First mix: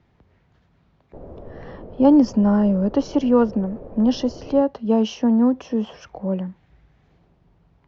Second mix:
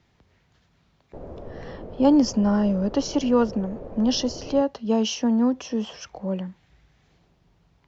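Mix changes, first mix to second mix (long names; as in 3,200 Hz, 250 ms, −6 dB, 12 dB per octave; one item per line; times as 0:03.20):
speech −4.0 dB
master: remove low-pass filter 1,300 Hz 6 dB per octave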